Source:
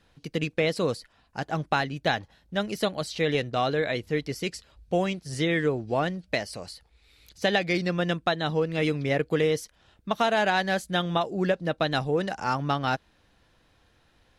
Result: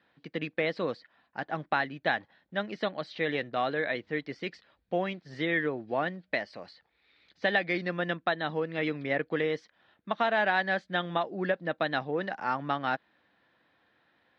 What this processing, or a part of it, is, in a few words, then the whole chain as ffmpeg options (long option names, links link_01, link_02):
kitchen radio: -af "highpass=220,equalizer=frequency=430:width_type=q:width=4:gain=-4,equalizer=frequency=1800:width_type=q:width=4:gain=5,equalizer=frequency=2800:width_type=q:width=4:gain=-4,lowpass=frequency=3700:width=0.5412,lowpass=frequency=3700:width=1.3066,volume=-3dB"